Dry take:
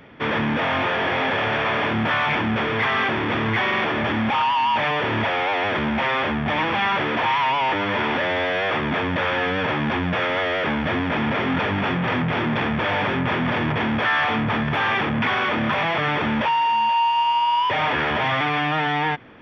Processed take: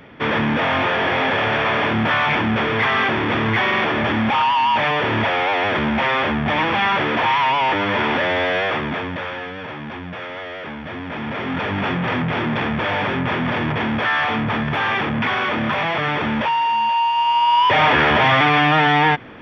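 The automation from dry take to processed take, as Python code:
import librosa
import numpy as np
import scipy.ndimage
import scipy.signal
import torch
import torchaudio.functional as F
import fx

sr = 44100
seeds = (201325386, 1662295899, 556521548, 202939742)

y = fx.gain(x, sr, db=fx.line((8.57, 3.0), (9.53, -8.5), (10.85, -8.5), (11.83, 1.0), (17.14, 1.0), (17.77, 7.0)))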